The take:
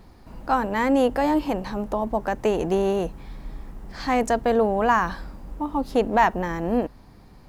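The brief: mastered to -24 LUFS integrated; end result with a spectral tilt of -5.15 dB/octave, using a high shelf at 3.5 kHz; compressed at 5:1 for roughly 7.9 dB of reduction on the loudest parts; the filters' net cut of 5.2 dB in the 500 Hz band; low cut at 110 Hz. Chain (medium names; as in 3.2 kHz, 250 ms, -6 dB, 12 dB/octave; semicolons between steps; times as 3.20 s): high-pass 110 Hz; peaking EQ 500 Hz -6.5 dB; treble shelf 3.5 kHz +3.5 dB; compression 5:1, threshold -24 dBFS; trim +6 dB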